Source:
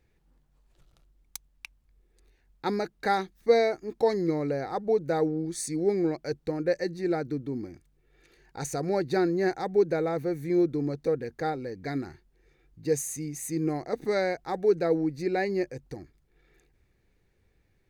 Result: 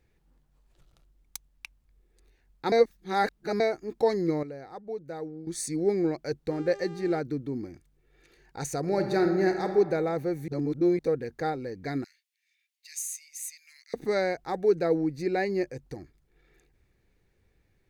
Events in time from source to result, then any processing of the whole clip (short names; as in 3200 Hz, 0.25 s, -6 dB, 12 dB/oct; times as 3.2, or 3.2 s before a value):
2.72–3.6 reverse
4.43–5.47 gain -11 dB
6.5–7.19 buzz 400 Hz, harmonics 21, -44 dBFS -9 dB/oct
8.8–9.71 reverb throw, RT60 1.4 s, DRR 5 dB
10.48–10.99 reverse
12.04–13.94 steep high-pass 2100 Hz